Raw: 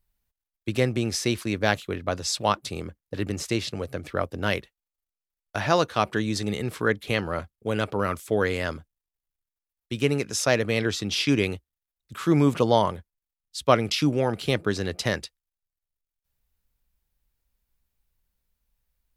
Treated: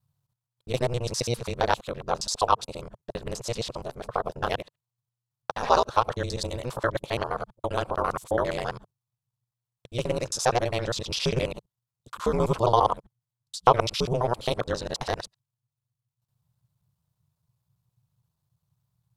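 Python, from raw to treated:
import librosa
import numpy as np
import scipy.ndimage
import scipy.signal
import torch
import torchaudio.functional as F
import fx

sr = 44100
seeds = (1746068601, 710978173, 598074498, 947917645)

y = fx.local_reverse(x, sr, ms=67.0)
y = y * np.sin(2.0 * np.pi * 120.0 * np.arange(len(y)) / sr)
y = fx.graphic_eq(y, sr, hz=(125, 250, 500, 1000, 2000, 4000, 8000), db=(12, -9, 6, 12, -5, 5, 5))
y = y * 10.0 ** (-4.0 / 20.0)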